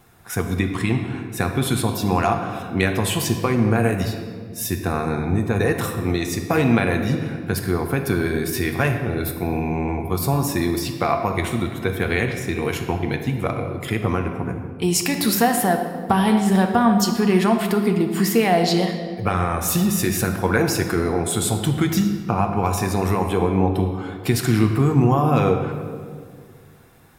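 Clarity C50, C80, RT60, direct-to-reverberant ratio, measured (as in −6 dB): 6.0 dB, 7.5 dB, 1.9 s, 4.0 dB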